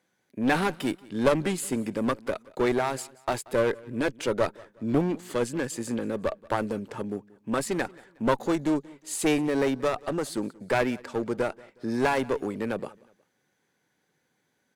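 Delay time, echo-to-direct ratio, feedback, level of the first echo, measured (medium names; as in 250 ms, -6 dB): 182 ms, -22.5 dB, 36%, -23.0 dB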